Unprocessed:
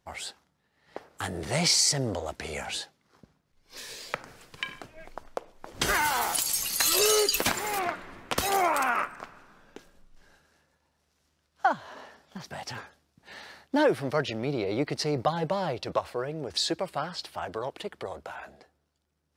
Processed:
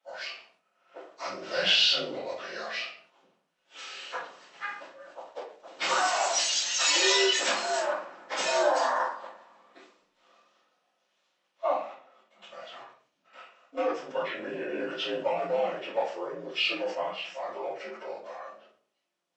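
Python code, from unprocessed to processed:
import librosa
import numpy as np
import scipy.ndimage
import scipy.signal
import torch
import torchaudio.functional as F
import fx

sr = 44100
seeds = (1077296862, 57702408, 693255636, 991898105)

y = fx.partial_stretch(x, sr, pct=84)
y = scipy.signal.sosfilt(scipy.signal.butter(2, 580.0, 'highpass', fs=sr, output='sos'), y)
y = fx.level_steps(y, sr, step_db=16, at=(11.92, 14.22))
y = fx.room_shoebox(y, sr, seeds[0], volume_m3=37.0, walls='mixed', distance_m=2.4)
y = fx.sustainer(y, sr, db_per_s=120.0)
y = y * librosa.db_to_amplitude(-9.0)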